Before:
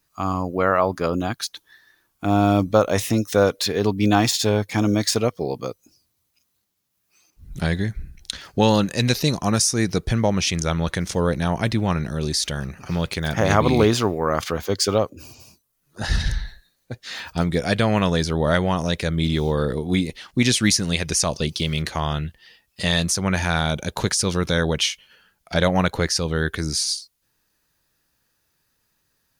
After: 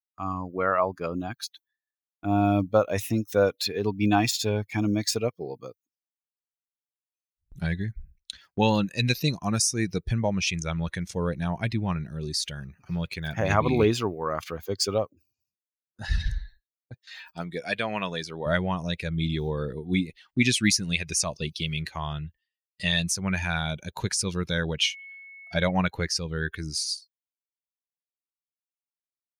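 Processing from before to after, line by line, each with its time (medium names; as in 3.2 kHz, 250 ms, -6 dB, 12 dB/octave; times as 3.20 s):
16.94–18.46 s: high-pass 320 Hz 6 dB/octave
24.83–25.70 s: whistle 2.2 kHz -37 dBFS
whole clip: expander on every frequency bin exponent 1.5; gate with hold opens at -40 dBFS; dynamic bell 2.5 kHz, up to +6 dB, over -48 dBFS, Q 2.9; trim -2.5 dB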